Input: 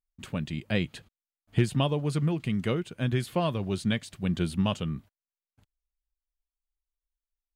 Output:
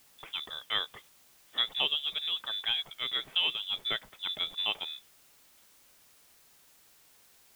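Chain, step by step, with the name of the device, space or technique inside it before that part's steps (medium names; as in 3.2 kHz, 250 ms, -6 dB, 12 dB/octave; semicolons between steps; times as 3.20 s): scrambled radio voice (band-pass 300–2900 Hz; frequency inversion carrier 3.7 kHz; white noise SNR 25 dB)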